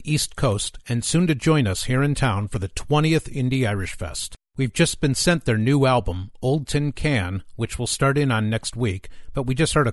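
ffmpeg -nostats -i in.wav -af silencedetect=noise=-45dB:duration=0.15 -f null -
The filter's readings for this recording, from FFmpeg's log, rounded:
silence_start: 4.35
silence_end: 4.56 | silence_duration: 0.21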